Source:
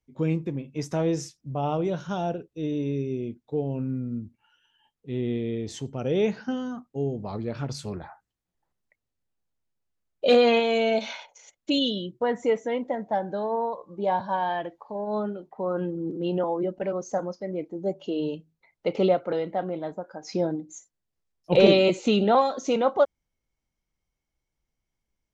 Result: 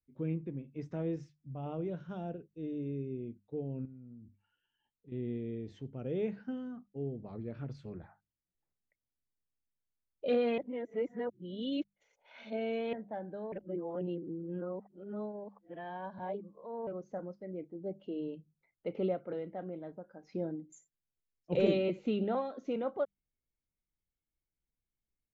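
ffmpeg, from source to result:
ffmpeg -i in.wav -filter_complex "[0:a]asettb=1/sr,asplit=3[link_01][link_02][link_03];[link_01]atrim=end=1.164[link_04];[link_02]atrim=start=1.16:end=1.66,asetpts=PTS-STARTPTS,afade=type=in:duration=0.004:curve=qsin,afade=type=out:start_time=0.496:duration=0.004:curve=qsin,equalizer=frequency=420:width_type=o:width=0.9:gain=-6[link_05];[link_03]atrim=start=1.656[link_06];[link_04][link_05]acrossfade=duration=0.004:curve1=hsin:curve2=qsin[link_07];[link_07][link_06]acrossfade=duration=0.004:curve1=qsin:curve2=hsin,asettb=1/sr,asplit=3[link_08][link_09][link_10];[link_08]atrim=end=3.854[link_11];[link_09]atrim=start=3.85:end=5.12,asetpts=PTS-STARTPTS,afade=type=in:duration=0.004:curve=qsin,afade=type=out:start_time=1.266:duration=0.004:curve=qsin,acompressor=threshold=-38dB:ratio=10:attack=3.2:release=140:knee=1:detection=peak[link_12];[link_10]atrim=start=5.116[link_13];[link_11][link_12]acrossfade=duration=0.004:curve1=hsin:curve2=qsin[link_14];[link_14][link_13]acrossfade=duration=0.004:curve1=qsin:curve2=hsin,asettb=1/sr,asplit=3[link_15][link_16][link_17];[link_15]atrim=end=20.724[link_18];[link_16]atrim=start=20.72:end=21.78,asetpts=PTS-STARTPTS,afade=type=in:duration=0.004:curve=qsin,afade=type=out:start_time=1.056:duration=0.004:curve=qsin,lowpass=frequency=7200:width_type=q:width=14[link_19];[link_17]atrim=start=21.776[link_20];[link_18][link_19]acrossfade=duration=0.004:curve1=hsin:curve2=qsin[link_21];[link_21][link_20]acrossfade=duration=0.004:curve1=qsin:curve2=hsin,asplit=5[link_22][link_23][link_24][link_25][link_26];[link_22]atrim=end=10.582[link_27];[link_23]atrim=start=10.578:end=12.932,asetpts=PTS-STARTPTS,areverse[link_28];[link_24]atrim=start=12.928:end=13.522[link_29];[link_25]atrim=start=13.518:end=16.872,asetpts=PTS-STARTPTS,areverse[link_30];[link_26]atrim=start=16.868[link_31];[link_27][link_28]acrossfade=duration=0.004:curve1=hsin:curve2=hsin[link_32];[link_32][link_29]acrossfade=duration=0.004:curve1=hsin:curve2=hsin[link_33];[link_33][link_30]acrossfade=duration=0.004:curve1=hsin:curve2=hsin[link_34];[link_34][link_31]acrossfade=duration=0.004:curve1=hsin:curve2=hsin,lowpass=1900,equalizer=frequency=930:width_type=o:width=1.3:gain=-9.5,bandreject=frequency=50:width_type=h:width=6,bandreject=frequency=100:width_type=h:width=6,bandreject=frequency=150:width_type=h:width=6,bandreject=frequency=200:width_type=h:width=6,volume=-8.5dB" out.wav

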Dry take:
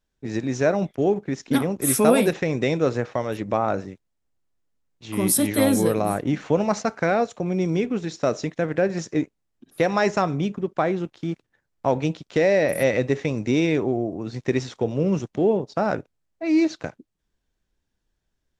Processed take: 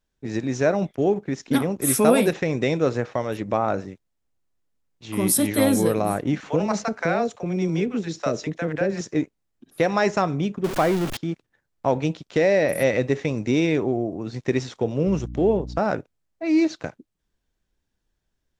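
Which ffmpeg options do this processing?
ffmpeg -i in.wav -filter_complex "[0:a]asettb=1/sr,asplit=3[link_01][link_02][link_03];[link_01]atrim=end=6.404[link_04];[link_02]atrim=start=6.4:end=9.01,asetpts=PTS-STARTPTS,afade=type=in:duration=0.004:curve=qsin,afade=type=out:start_time=2.606:duration=0.004:curve=qsin,acrossover=split=590[link_05][link_06];[link_05]adelay=30[link_07];[link_07][link_06]amix=inputs=2:normalize=0,atrim=end_sample=115101[link_08];[link_03]atrim=start=9.006[link_09];[link_04][link_08]acrossfade=duration=0.004:curve1=hsin:curve2=qsin[link_10];[link_10][link_09]acrossfade=duration=0.004:curve1=qsin:curve2=hsin,asettb=1/sr,asplit=3[link_11][link_12][link_13];[link_11]atrim=end=10.644[link_14];[link_12]atrim=start=10.64:end=11.17,asetpts=PTS-STARTPTS,afade=type=in:duration=0.004:curve=qsin,afade=type=out:start_time=0.526:duration=0.004:curve=qsin,aeval=exprs='val(0)+0.5*0.0631*sgn(val(0))':channel_layout=same[link_15];[link_13]atrim=start=11.166[link_16];[link_14][link_15]acrossfade=duration=0.004:curve1=hsin:curve2=qsin[link_17];[link_17][link_16]acrossfade=duration=0.004:curve1=qsin:curve2=hsin,asettb=1/sr,asplit=3[link_18][link_19][link_20];[link_18]atrim=end=15.074[link_21];[link_19]atrim=start=15.07:end=15.79,asetpts=PTS-STARTPTS,afade=type=in:duration=0.004:curve=qsin,afade=type=out:start_time=0.716:duration=0.004:curve=qsin,aeval=exprs='val(0)+0.0224*(sin(2*PI*60*n/s)+sin(2*PI*2*60*n/s)/2+sin(2*PI*3*60*n/s)/3+sin(2*PI*4*60*n/s)/4+sin(2*PI*5*60*n/s)/5)':channel_layout=same[link_22];[link_20]atrim=start=15.786[link_23];[link_21][link_22]acrossfade=duration=0.004:curve1=hsin:curve2=qsin[link_24];[link_24][link_23]acrossfade=duration=0.004:curve1=qsin:curve2=hsin" out.wav

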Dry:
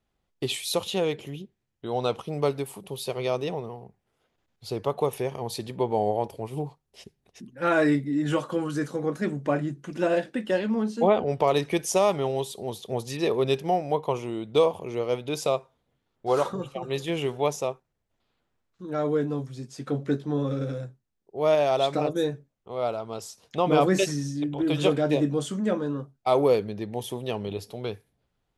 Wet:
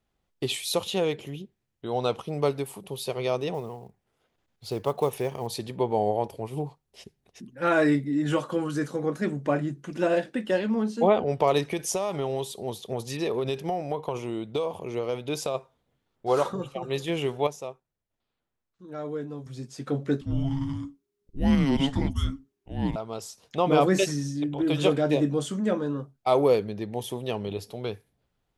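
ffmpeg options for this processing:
ffmpeg -i in.wav -filter_complex "[0:a]asettb=1/sr,asplit=3[link_01][link_02][link_03];[link_01]atrim=end=3.544[link_04];[link_02]atrim=start=3.54:end=5.47,asetpts=PTS-STARTPTS,afade=type=in:duration=0.004:curve=qsin,afade=type=out:start_time=1.926:duration=0.004:curve=qsin,acrusher=bits=7:mode=log:mix=0:aa=0.000001[link_05];[link_03]atrim=start=5.466[link_06];[link_04][link_05]acrossfade=duration=0.004:curve1=hsin:curve2=qsin[link_07];[link_07][link_06]acrossfade=duration=0.004:curve1=qsin:curve2=hsin,asplit=3[link_08][link_09][link_10];[link_08]afade=type=out:start_time=11.64:duration=0.02[link_11];[link_09]acompressor=threshold=-23dB:ratio=10:attack=3.2:release=140:knee=1:detection=peak,afade=type=in:start_time=11.64:duration=0.02,afade=type=out:start_time=15.54:duration=0.02[link_12];[link_10]afade=type=in:start_time=15.54:duration=0.02[link_13];[link_11][link_12][link_13]amix=inputs=3:normalize=0,asettb=1/sr,asplit=3[link_14][link_15][link_16];[link_14]atrim=end=20.214[link_17];[link_15]atrim=start=20.21:end=22.96,asetpts=PTS-STARTPTS,afade=type=in:duration=0.004:curve=qsin,afade=type=out:start_time=2.746:duration=0.004:curve=qsin,afreqshift=-410[link_18];[link_16]atrim=start=22.956[link_19];[link_17][link_18]acrossfade=duration=0.004:curve1=hsin:curve2=qsin[link_20];[link_20][link_19]acrossfade=duration=0.004:curve1=qsin:curve2=hsin,asplit=3[link_21][link_22][link_23];[link_21]atrim=end=17.472[link_24];[link_22]atrim=start=17.468:end=19.462,asetpts=PTS-STARTPTS,volume=-8dB[link_25];[link_23]atrim=start=19.458[link_26];[link_24][link_25]acrossfade=duration=0.004:curve1=hsin:curve2=hsin[link_27];[link_27][link_26]acrossfade=duration=0.004:curve1=hsin:curve2=hsin" out.wav

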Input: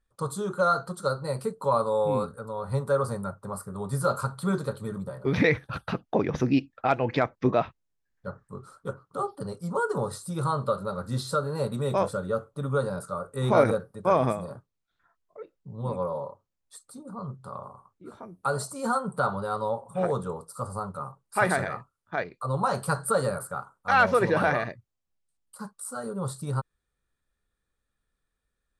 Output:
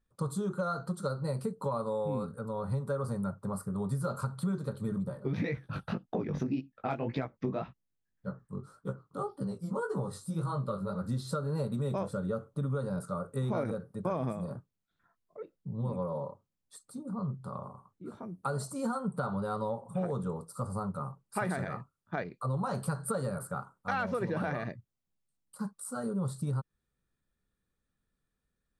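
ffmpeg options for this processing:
ffmpeg -i in.wav -filter_complex "[0:a]asplit=3[link_01][link_02][link_03];[link_01]afade=type=out:start_time=5.13:duration=0.02[link_04];[link_02]flanger=delay=15:depth=6:speed=1.8,afade=type=in:start_time=5.13:duration=0.02,afade=type=out:start_time=11.01:duration=0.02[link_05];[link_03]afade=type=in:start_time=11.01:duration=0.02[link_06];[link_04][link_05][link_06]amix=inputs=3:normalize=0,equalizer=frequency=180:width_type=o:width=1.9:gain=9.5,acompressor=threshold=-25dB:ratio=6,volume=-4.5dB" out.wav

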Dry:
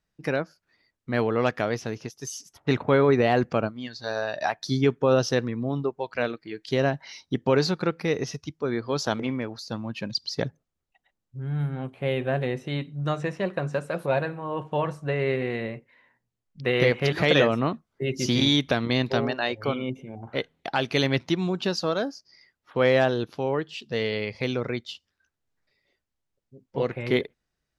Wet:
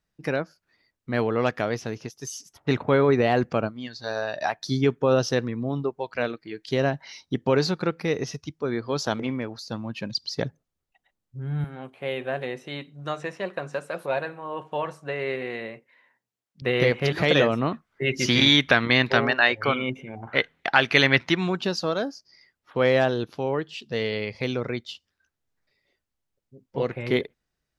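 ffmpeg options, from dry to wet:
ffmpeg -i in.wav -filter_complex "[0:a]asettb=1/sr,asplit=3[link_01][link_02][link_03];[link_01]atrim=end=11.644[link_04];[link_02]atrim=start=11.64:end=16.62,asetpts=PTS-STARTPTS,afade=type=in:duration=0.004:curve=qsin,afade=type=out:start_time=4.976:duration=0.004:curve=qsin,highpass=frequency=460:poles=1[link_05];[link_03]atrim=start=16.616[link_06];[link_04][link_05]acrossfade=duration=0.004:curve1=hsin:curve2=qsin[link_07];[link_07][link_06]acrossfade=duration=0.004:curve1=qsin:curve2=hsin,asplit=3[link_08][link_09][link_10];[link_08]afade=type=out:start_time=17.71:duration=0.02[link_11];[link_09]equalizer=frequency=1800:width=0.78:gain=12,afade=type=in:start_time=17.71:duration=0.02,afade=type=out:start_time=21.56:duration=0.02[link_12];[link_10]afade=type=in:start_time=21.56:duration=0.02[link_13];[link_11][link_12][link_13]amix=inputs=3:normalize=0" out.wav

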